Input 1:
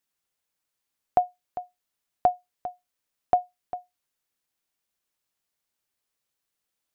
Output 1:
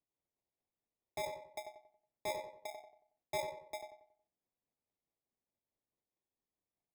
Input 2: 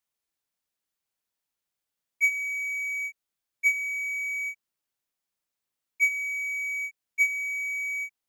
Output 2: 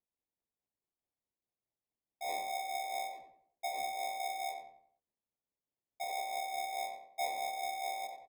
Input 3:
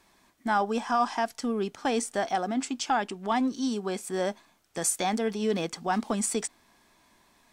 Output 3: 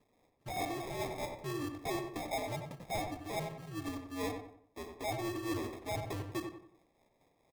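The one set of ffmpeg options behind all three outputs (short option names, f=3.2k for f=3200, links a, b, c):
-filter_complex "[0:a]highpass=f=210:t=q:w=0.5412,highpass=f=210:t=q:w=1.307,lowpass=f=2.9k:t=q:w=0.5176,lowpass=f=2.9k:t=q:w=0.7071,lowpass=f=2.9k:t=q:w=1.932,afreqshift=-100,aecho=1:1:2.9:0.76,flanger=delay=9.6:depth=6.4:regen=-72:speed=1.8:shape=triangular,aresample=16000,asoftclip=type=tanh:threshold=-24.5dB,aresample=44100,acrusher=samples=30:mix=1:aa=0.000001,volume=29.5dB,asoftclip=hard,volume=-29.5dB,tremolo=f=4.7:d=0.5,bandreject=f=365.2:t=h:w=4,bandreject=f=730.4:t=h:w=4,bandreject=f=1.0956k:t=h:w=4,asplit=2[a][b];[b]adelay=92,lowpass=f=2.2k:p=1,volume=-5.5dB,asplit=2[c][d];[d]adelay=92,lowpass=f=2.2k:p=1,volume=0.39,asplit=2[e][f];[f]adelay=92,lowpass=f=2.2k:p=1,volume=0.39,asplit=2[g][h];[h]adelay=92,lowpass=f=2.2k:p=1,volume=0.39,asplit=2[i][j];[j]adelay=92,lowpass=f=2.2k:p=1,volume=0.39[k];[c][e][g][i][k]amix=inputs=5:normalize=0[l];[a][l]amix=inputs=2:normalize=0,volume=-2.5dB"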